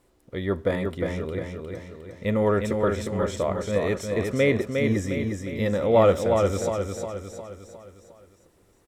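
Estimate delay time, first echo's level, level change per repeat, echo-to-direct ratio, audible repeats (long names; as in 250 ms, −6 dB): 357 ms, −4.5 dB, −6.0 dB, −3.5 dB, 5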